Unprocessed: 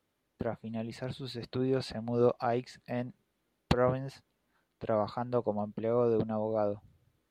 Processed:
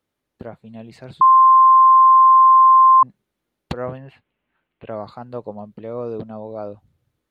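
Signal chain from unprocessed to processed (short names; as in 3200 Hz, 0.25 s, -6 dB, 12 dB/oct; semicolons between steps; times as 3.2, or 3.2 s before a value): 1.21–3.03 bleep 1050 Hz -7 dBFS; 3.97–4.9 resonant high shelf 3900 Hz -13 dB, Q 3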